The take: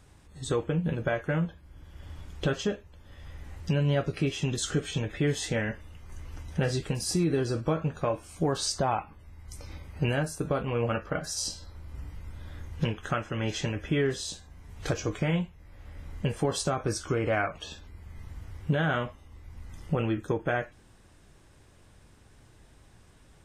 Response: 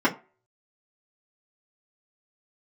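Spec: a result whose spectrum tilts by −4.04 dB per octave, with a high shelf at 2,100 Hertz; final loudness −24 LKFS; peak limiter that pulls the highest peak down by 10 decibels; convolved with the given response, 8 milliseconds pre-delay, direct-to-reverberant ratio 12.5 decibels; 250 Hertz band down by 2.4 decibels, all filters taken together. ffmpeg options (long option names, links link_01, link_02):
-filter_complex "[0:a]equalizer=frequency=250:width_type=o:gain=-4,highshelf=frequency=2100:gain=6,alimiter=limit=-23.5dB:level=0:latency=1,asplit=2[link_01][link_02];[1:a]atrim=start_sample=2205,adelay=8[link_03];[link_02][link_03]afir=irnorm=-1:irlink=0,volume=-28.5dB[link_04];[link_01][link_04]amix=inputs=2:normalize=0,volume=10dB"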